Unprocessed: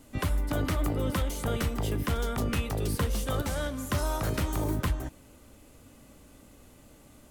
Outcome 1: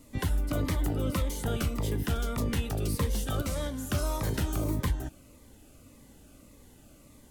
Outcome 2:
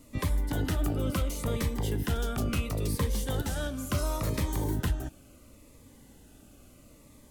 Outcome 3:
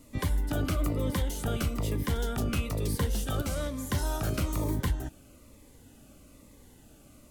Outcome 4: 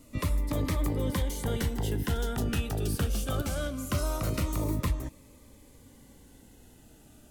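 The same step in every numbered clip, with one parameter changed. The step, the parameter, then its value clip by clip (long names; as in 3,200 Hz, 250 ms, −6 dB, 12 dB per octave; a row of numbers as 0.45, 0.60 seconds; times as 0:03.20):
phaser whose notches keep moving one way, speed: 1.7, 0.72, 1.1, 0.22 Hertz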